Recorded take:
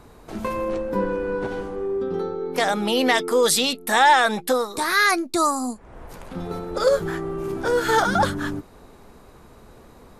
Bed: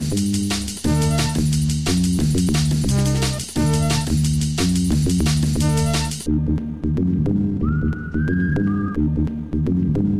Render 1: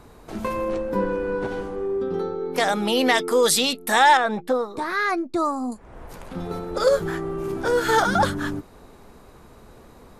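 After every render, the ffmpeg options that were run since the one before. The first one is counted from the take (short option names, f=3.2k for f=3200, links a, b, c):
-filter_complex "[0:a]asettb=1/sr,asplit=3[a][b][c];[a]atrim=end=4.174[d];[b]atrim=start=4.17:end=5.72,asetpts=PTS-STARTPTS,afade=t=in:d=0.004:c=qsin,afade=t=out:st=1.546:d=0.004:c=qsin,lowpass=f=1k:p=1[e];[c]atrim=start=5.716[f];[d][e]acrossfade=d=0.004:c1=hsin:c2=qsin[g];[g][f]acrossfade=d=0.004:c1=qsin:c2=hsin"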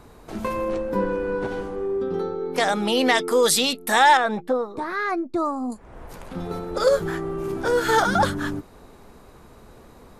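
-filter_complex "[0:a]asettb=1/sr,asplit=3[a][b][c];[a]atrim=end=2.564[d];[b]atrim=start=2.56:end=3.23,asetpts=PTS-STARTPTS,afade=t=in:d=0.004:c=qsin,afade=t=out:st=0.666:d=0.004:c=qsin,lowpass=f=11k:w=0.5412,lowpass=f=11k:w=1.3066[e];[c]atrim=start=3.226[f];[d][e]acrossfade=d=0.004:c1=hsin:c2=qsin[g];[g][f]acrossfade=d=0.004:c1=qsin:c2=hsin,asettb=1/sr,asplit=3[h][i][j];[h]atrim=end=4.474[k];[i]atrim=start=4.47:end=5.7,asetpts=PTS-STARTPTS,afade=t=in:d=0.004:c=qsin,afade=t=out:st=1.226:d=0.004:c=qsin,highshelf=f=2.1k:g=-9[l];[j]atrim=start=5.696[m];[k][l]acrossfade=d=0.004:c1=hsin:c2=qsin[n];[n][m]acrossfade=d=0.004:c1=qsin:c2=hsin"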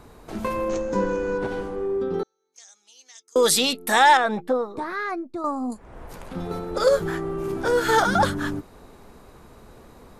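-filter_complex "[0:a]asettb=1/sr,asplit=3[a][b][c];[a]atrim=end=0.694[d];[b]atrim=start=0.69:end=1.38,asetpts=PTS-STARTPTS,afade=t=in:d=0.004:c=qsin,afade=t=out:st=0.686:d=0.004:c=qsin,lowpass=f=6.6k:t=q:w=8.8[e];[c]atrim=start=1.376[f];[d][e]acrossfade=d=0.004:c1=hsin:c2=qsin[g];[g][f]acrossfade=d=0.004:c1=qsin:c2=hsin,asettb=1/sr,asplit=3[h][i][j];[h]atrim=end=2.234[k];[i]atrim=start=2.23:end=3.36,asetpts=PTS-STARTPTS,afade=t=in:d=0.004:c=qsin,afade=t=out:st=1.126:d=0.004:c=qsin,bandpass=f=6.4k:t=q:w=15[l];[j]atrim=start=3.356[m];[k][l]acrossfade=d=0.004:c1=hsin:c2=qsin[n];[n][m]acrossfade=d=0.004:c1=qsin:c2=hsin,asplit=2[o][p];[o]atrim=end=5.44,asetpts=PTS-STARTPTS,afade=t=out:st=4.69:d=0.75:silence=0.375837[q];[p]atrim=start=5.44,asetpts=PTS-STARTPTS,afade=t=in:d=0.004:c=hsin:silence=0.375837[r];[q][r]concat=n=2:v=0:a=1"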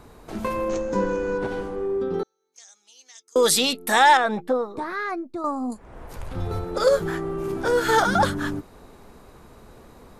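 -filter_complex "[0:a]asettb=1/sr,asplit=3[a][b][c];[a]atrim=end=6.164[d];[b]atrim=start=6.16:end=6.65,asetpts=PTS-STARTPTS,afade=t=in:d=0.004:c=qsin,afade=t=out:st=0.486:d=0.004:c=qsin,lowshelf=f=140:t=q:w=3:g=8[e];[c]atrim=start=6.646[f];[d][e]acrossfade=d=0.004:c1=hsin:c2=qsin[g];[g][f]acrossfade=d=0.004:c1=qsin:c2=hsin"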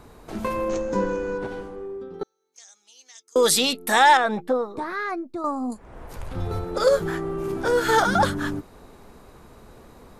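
-filter_complex "[0:a]asplit=2[a][b];[a]atrim=end=2.21,asetpts=PTS-STARTPTS,afade=t=out:st=0.93:d=1.28:silence=0.188365[c];[b]atrim=start=2.21,asetpts=PTS-STARTPTS,afade=t=in:d=0.004:c=hsin:silence=0.188365[d];[c][d]concat=n=2:v=0:a=1"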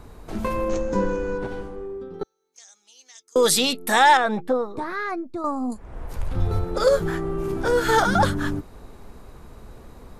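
-af "lowshelf=f=98:g=10"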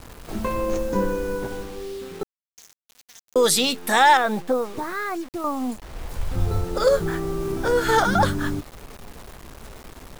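-af "acrusher=bits=6:mix=0:aa=0.000001"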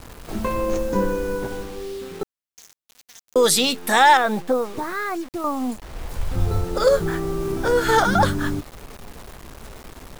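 -af "volume=1.5dB"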